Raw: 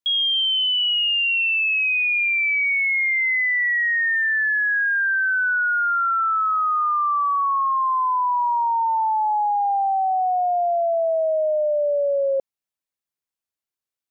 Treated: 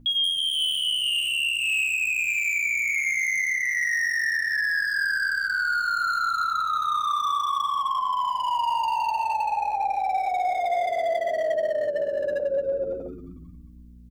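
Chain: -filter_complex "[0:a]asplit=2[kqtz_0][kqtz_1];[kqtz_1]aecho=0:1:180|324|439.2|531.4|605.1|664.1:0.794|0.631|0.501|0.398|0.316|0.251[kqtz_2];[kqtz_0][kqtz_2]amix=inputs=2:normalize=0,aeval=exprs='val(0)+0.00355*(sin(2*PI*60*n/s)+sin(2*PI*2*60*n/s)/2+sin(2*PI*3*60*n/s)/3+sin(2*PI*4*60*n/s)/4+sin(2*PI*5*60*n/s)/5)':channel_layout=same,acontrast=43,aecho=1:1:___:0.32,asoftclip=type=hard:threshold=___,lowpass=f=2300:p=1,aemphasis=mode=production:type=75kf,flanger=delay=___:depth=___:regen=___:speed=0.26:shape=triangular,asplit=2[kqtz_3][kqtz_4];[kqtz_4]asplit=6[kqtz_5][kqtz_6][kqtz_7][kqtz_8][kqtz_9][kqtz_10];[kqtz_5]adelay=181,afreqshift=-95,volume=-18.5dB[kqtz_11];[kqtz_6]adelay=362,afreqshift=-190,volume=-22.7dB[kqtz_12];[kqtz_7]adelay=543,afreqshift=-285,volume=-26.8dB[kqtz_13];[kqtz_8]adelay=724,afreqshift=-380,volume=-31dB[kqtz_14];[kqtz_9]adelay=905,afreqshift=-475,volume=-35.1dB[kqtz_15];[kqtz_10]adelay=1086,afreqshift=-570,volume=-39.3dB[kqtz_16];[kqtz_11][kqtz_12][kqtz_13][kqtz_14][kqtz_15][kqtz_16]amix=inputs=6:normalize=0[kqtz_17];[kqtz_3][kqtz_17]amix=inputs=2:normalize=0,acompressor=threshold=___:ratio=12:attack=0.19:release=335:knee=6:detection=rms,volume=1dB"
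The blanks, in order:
4.3, -10dB, 7.7, 5.6, -32, -21dB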